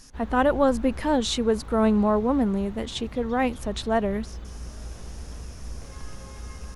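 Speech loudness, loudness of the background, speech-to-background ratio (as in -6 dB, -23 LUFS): -24.5 LUFS, -40.5 LUFS, 16.0 dB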